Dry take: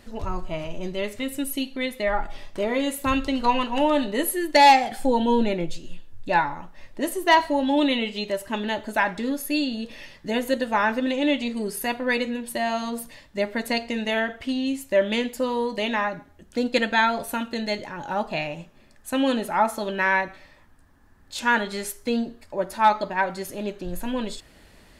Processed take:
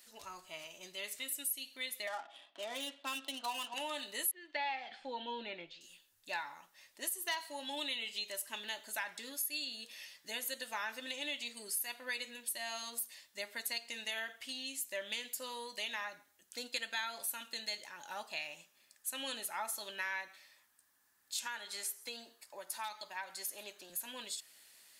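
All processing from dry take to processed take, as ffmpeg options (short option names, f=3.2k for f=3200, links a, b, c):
-filter_complex "[0:a]asettb=1/sr,asplit=3[a][b][c];[a]atrim=end=2.074[d];[b]atrim=start=2.07:end=3.74,asetpts=PTS-STARTPTS,afade=t=in:d=0.004:c=qsin,afade=t=out:st=1.666:d=0.004:c=qsin,highpass=f=220:w=0.5412,highpass=f=220:w=1.3066,equalizer=f=280:t=q:w=4:g=5,equalizer=f=430:t=q:w=4:g=-7,equalizer=f=700:t=q:w=4:g=9,equalizer=f=2.1k:t=q:w=4:g=-8,equalizer=f=3.3k:t=q:w=4:g=7,lowpass=f=3.9k:w=0.5412,lowpass=f=3.9k:w=1.3066,adynamicsmooth=sensitivity=7.5:basefreq=2.6k[e];[c]atrim=start=3.736[f];[d][e]acrossfade=d=0.004:c1=hsin:c2=qsin[g];[g][f]acrossfade=d=0.004:c1=qsin:c2=hsin,asettb=1/sr,asplit=3[h][i][j];[h]atrim=end=4.314[k];[i]atrim=start=4.31:end=5.81,asetpts=PTS-STARTPTS,afade=t=in:d=0.004:c=qsin,afade=t=out:st=1.496:d=0.004:c=qsin,acrossover=split=3000[l][m];[m]acompressor=threshold=-42dB:ratio=4:attack=1:release=60[n];[l][n]amix=inputs=2:normalize=0,lowpass=f=3.8k:w=0.5412,lowpass=f=3.8k:w=1.3066[o];[j]atrim=start=5.806[p];[k][o]acrossfade=d=0.004:c1=hsin:c2=qsin[q];[q][p]acrossfade=d=0.004:c1=qsin:c2=hsin,asettb=1/sr,asplit=3[r][s][t];[r]atrim=end=21.464[u];[s]atrim=start=21.46:end=23.9,asetpts=PTS-STARTPTS,afade=t=in:d=0.004:c=qsin,afade=t=out:st=2.436:d=0.004:c=qsin,equalizer=f=860:w=1.1:g=5,acrossover=split=210|2300[v][w][x];[v]acompressor=threshold=-46dB:ratio=4[y];[w]acompressor=threshold=-26dB:ratio=4[z];[x]acompressor=threshold=-38dB:ratio=4[aa];[y][z][aa]amix=inputs=3:normalize=0,aecho=1:1:134:0.0708,atrim=end_sample=107604[ab];[t]atrim=start=23.896[ac];[u][ab]acrossfade=d=0.004:c1=hsin:c2=qsin[ad];[ad][ac]acrossfade=d=0.004:c1=qsin:c2=hsin,aderivative,acompressor=threshold=-37dB:ratio=3,volume=1dB"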